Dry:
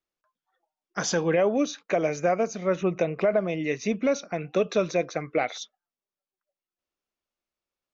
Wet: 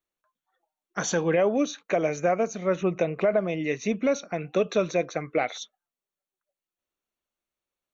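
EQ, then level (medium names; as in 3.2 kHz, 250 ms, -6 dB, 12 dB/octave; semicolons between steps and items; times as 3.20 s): Butterworth band-stop 5 kHz, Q 6.1; 0.0 dB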